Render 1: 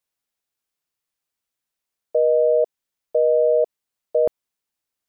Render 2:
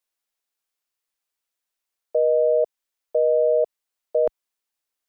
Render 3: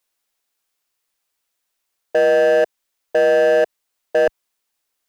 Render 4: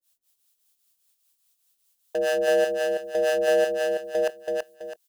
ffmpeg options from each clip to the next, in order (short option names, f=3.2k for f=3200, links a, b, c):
-af "equalizer=f=120:t=o:w=1.8:g=-14.5"
-af "volume=20dB,asoftclip=hard,volume=-20dB,volume=8.5dB"
-filter_complex "[0:a]acrossover=split=550[a][b];[a]aeval=exprs='val(0)*(1-1/2+1/2*cos(2*PI*5*n/s))':c=same[c];[b]aeval=exprs='val(0)*(1-1/2-1/2*cos(2*PI*5*n/s))':c=same[d];[c][d]amix=inputs=2:normalize=0,aexciter=amount=2.7:drive=6:freq=2.9k,aecho=1:1:329|658|987|1316:0.708|0.241|0.0818|0.0278,volume=-4dB"